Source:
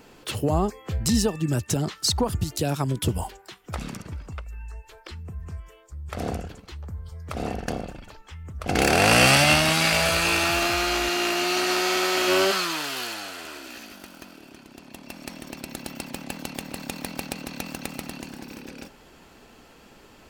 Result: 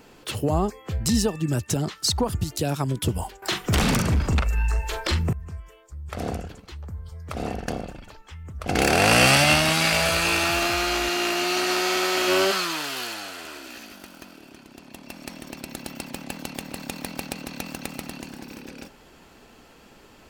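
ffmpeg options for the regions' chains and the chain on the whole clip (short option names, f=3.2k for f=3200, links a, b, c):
-filter_complex "[0:a]asettb=1/sr,asplit=3[a][b][c];[a]atrim=end=3.424[d];[b]atrim=start=3.42:end=5.33,asetpts=PTS-STARTPTS,afade=t=in:d=0.004:c=qsin,afade=t=out:st=1.906:d=0.004:c=qsin,bandreject=f=50:t=h:w=6,bandreject=f=100:t=h:w=6,bandreject=f=150:t=h:w=6,bandreject=f=200:t=h:w=6,bandreject=f=250:t=h:w=6,bandreject=f=300:t=h:w=6,bandreject=f=350:t=h:w=6,bandreject=f=400:t=h:w=6,bandreject=f=450:t=h:w=6,bandreject=f=500:t=h:w=6,asplit=2[e][f];[f]adelay=42,volume=-7dB[g];[e][g]amix=inputs=2:normalize=0,atrim=end_sample=84231,aeval=exprs='0.15*sin(PI/2*5.01*val(0)/0.15)':c=same[h];[c]atrim=start=5.326[i];[d][h]acrossfade=d=0.004:c1=hsin:c2=qsin[j];[j][i]acrossfade=d=0.004:c1=qsin:c2=hsin"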